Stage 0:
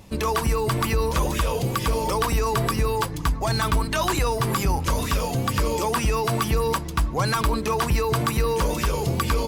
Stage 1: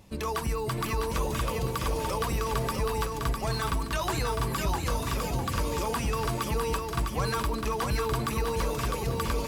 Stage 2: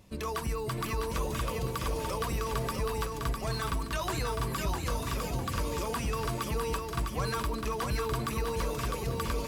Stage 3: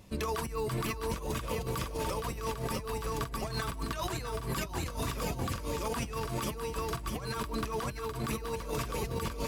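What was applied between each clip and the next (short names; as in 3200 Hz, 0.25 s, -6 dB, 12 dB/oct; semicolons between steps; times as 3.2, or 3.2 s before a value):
lo-fi delay 0.654 s, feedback 35%, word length 9-bit, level -4 dB; gain -7.5 dB
notch 840 Hz, Q 12; gain -3 dB
negative-ratio compressor -34 dBFS, ratio -0.5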